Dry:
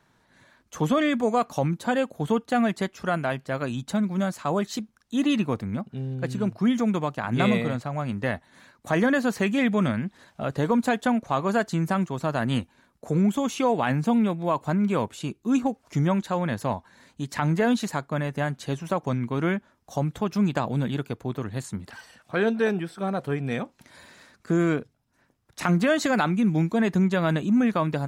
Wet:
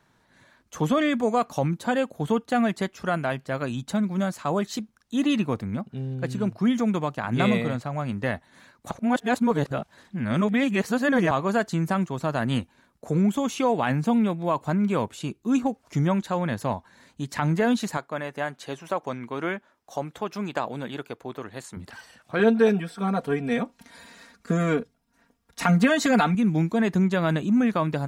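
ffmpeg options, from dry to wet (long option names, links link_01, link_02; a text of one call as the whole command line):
ffmpeg -i in.wav -filter_complex "[0:a]asettb=1/sr,asplit=3[link_01][link_02][link_03];[link_01]atrim=end=17.974[link_04];[link_02]atrim=start=17.97:end=21.77,asetpts=PTS-STARTPTS,afade=type=in:duration=0.004:curve=qsin,afade=type=out:start_time=3.796:duration=0.004:curve=qsin,bass=frequency=250:gain=-14,treble=frequency=4000:gain=-3[link_05];[link_03]atrim=start=21.766[link_06];[link_04][link_05]acrossfade=duration=0.004:curve1=hsin:curve2=qsin[link_07];[link_07][link_06]acrossfade=duration=0.004:curve1=qsin:curve2=hsin,asettb=1/sr,asplit=3[link_08][link_09][link_10];[link_08]atrim=end=22.394[link_11];[link_09]atrim=start=22.39:end=26.35,asetpts=PTS-STARTPTS,afade=type=in:duration=0.004:curve=qsin,afade=type=out:start_time=3.956:duration=0.004:curve=qsin,aecho=1:1:4.3:0.83,atrim=end_sample=174636[link_12];[link_10]atrim=start=26.346[link_13];[link_11][link_12]acrossfade=duration=0.004:curve1=hsin:curve2=qsin[link_14];[link_14][link_13]acrossfade=duration=0.004:curve1=qsin:curve2=hsin,asplit=3[link_15][link_16][link_17];[link_15]atrim=end=8.912[link_18];[link_16]atrim=start=8.908:end=11.312,asetpts=PTS-STARTPTS,areverse[link_19];[link_17]atrim=start=11.308[link_20];[link_18][link_19]acrossfade=duration=0.004:curve1=hsin:curve2=hsin[link_21];[link_21][link_20]acrossfade=duration=0.004:curve1=hsin:curve2=hsin" out.wav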